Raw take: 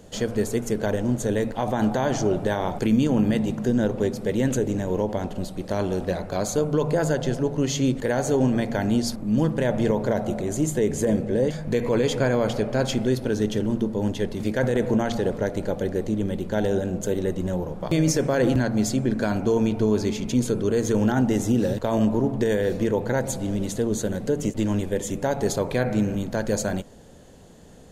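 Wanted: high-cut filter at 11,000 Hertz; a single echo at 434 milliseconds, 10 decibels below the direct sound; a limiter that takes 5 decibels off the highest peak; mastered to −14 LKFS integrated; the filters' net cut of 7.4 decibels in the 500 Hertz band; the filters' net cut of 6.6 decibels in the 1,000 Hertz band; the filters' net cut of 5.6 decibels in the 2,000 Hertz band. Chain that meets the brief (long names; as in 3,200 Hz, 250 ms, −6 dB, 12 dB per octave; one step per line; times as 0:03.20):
low-pass filter 11,000 Hz
parametric band 500 Hz −8 dB
parametric band 1,000 Hz −4.5 dB
parametric band 2,000 Hz −5 dB
brickwall limiter −17.5 dBFS
single-tap delay 434 ms −10 dB
level +14 dB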